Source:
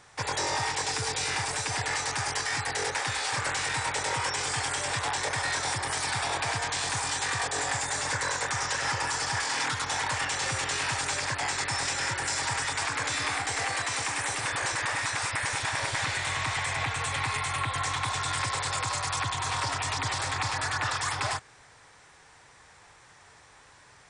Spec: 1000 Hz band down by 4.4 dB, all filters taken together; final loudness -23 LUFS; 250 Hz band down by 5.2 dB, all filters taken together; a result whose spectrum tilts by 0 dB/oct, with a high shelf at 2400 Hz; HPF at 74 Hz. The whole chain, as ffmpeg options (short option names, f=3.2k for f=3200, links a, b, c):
-af "highpass=74,equalizer=f=250:t=o:g=-8,equalizer=f=1k:t=o:g=-6,highshelf=f=2.4k:g=5,volume=4dB"